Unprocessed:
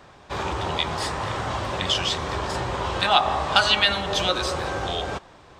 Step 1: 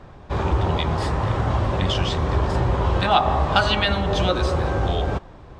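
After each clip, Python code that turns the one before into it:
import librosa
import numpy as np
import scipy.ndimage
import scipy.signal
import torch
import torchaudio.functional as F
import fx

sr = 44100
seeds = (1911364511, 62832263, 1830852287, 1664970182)

y = fx.tilt_eq(x, sr, slope=-3.0)
y = y * 10.0 ** (1.0 / 20.0)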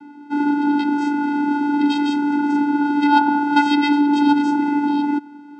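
y = fx.vocoder(x, sr, bands=8, carrier='square', carrier_hz=290.0)
y = y * 10.0 ** (6.0 / 20.0)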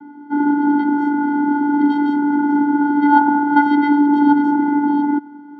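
y = scipy.signal.savgol_filter(x, 41, 4, mode='constant')
y = y * 10.0 ** (2.5 / 20.0)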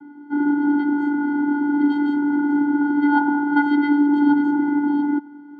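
y = fx.notch_comb(x, sr, f0_hz=220.0)
y = y * 10.0 ** (-2.5 / 20.0)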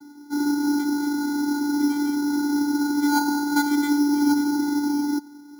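y = np.repeat(x[::8], 8)[:len(x)]
y = y * 10.0 ** (-3.5 / 20.0)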